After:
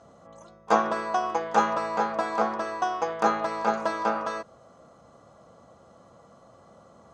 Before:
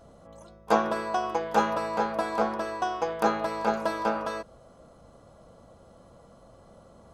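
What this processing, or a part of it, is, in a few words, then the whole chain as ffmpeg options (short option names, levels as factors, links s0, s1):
car door speaker: -af "highpass=100,equalizer=f=770:t=q:w=4:g=3,equalizer=f=1200:t=q:w=4:g=6,equalizer=f=1900:t=q:w=4:g=4,equalizer=f=6500:t=q:w=4:g=5,lowpass=f=8400:w=0.5412,lowpass=f=8400:w=1.3066,volume=0.891"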